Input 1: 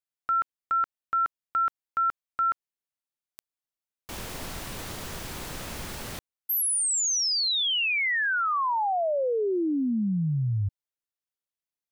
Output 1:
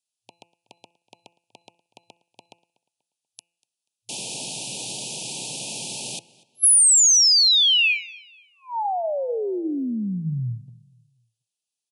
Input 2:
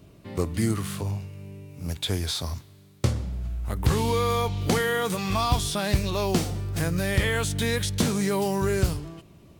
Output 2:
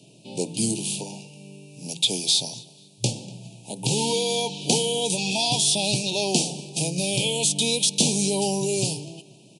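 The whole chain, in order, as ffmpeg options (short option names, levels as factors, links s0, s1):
-filter_complex "[0:a]bandreject=f=170.5:t=h:w=4,bandreject=f=341:t=h:w=4,bandreject=f=511.5:t=h:w=4,bandreject=f=682:t=h:w=4,bandreject=f=852.5:t=h:w=4,bandreject=f=1023:t=h:w=4,bandreject=f=1193.5:t=h:w=4,bandreject=f=1364:t=h:w=4,bandreject=f=1534.5:t=h:w=4,bandreject=f=1705:t=h:w=4,bandreject=f=1875.5:t=h:w=4,bandreject=f=2046:t=h:w=4,bandreject=f=2216.5:t=h:w=4,bandreject=f=2387:t=h:w=4,bandreject=f=2557.5:t=h:w=4,bandreject=f=2728:t=h:w=4,bandreject=f=2898.5:t=h:w=4,afftfilt=real='re*between(b*sr/4096,110,11000)':imag='im*between(b*sr/4096,110,11000)':win_size=4096:overlap=0.75,highshelf=f=3300:g=6.5,acrossover=split=220|1200[s0][s1][s2];[s2]acontrast=43[s3];[s0][s1][s3]amix=inputs=3:normalize=0,asuperstop=centerf=1500:order=20:qfactor=1,asplit=2[s4][s5];[s5]adelay=242,lowpass=f=4600:p=1,volume=0.0891,asplit=2[s6][s7];[s7]adelay=242,lowpass=f=4600:p=1,volume=0.36,asplit=2[s8][s9];[s9]adelay=242,lowpass=f=4600:p=1,volume=0.36[s10];[s6][s8][s10]amix=inputs=3:normalize=0[s11];[s4][s11]amix=inputs=2:normalize=0"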